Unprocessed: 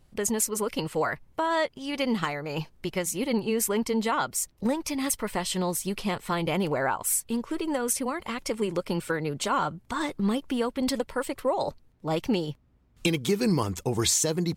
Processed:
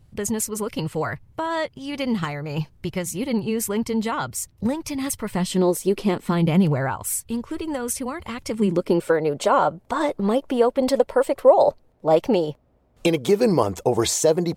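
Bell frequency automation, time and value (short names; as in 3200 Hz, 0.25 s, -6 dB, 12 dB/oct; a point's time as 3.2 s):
bell +14.5 dB 1.4 oct
5.25 s 100 Hz
5.76 s 480 Hz
7.13 s 78 Hz
8.34 s 78 Hz
9.09 s 600 Hz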